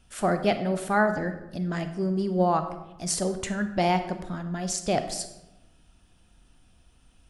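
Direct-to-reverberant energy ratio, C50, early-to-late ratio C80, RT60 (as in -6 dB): 8.5 dB, 10.0 dB, 12.5 dB, 0.95 s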